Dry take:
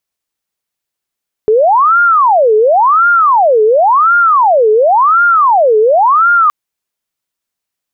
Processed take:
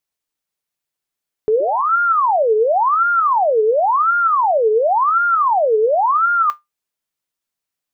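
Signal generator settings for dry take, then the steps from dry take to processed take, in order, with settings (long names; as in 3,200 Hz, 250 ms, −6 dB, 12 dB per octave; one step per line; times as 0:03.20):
siren wail 426–1,410 Hz 0.93 per second sine −5 dBFS 5.02 s
sound drawn into the spectrogram rise, 0:01.60–0:01.90, 350–1,400 Hz −14 dBFS
brickwall limiter −8 dBFS
tuned comb filter 150 Hz, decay 0.17 s, harmonics all, mix 50%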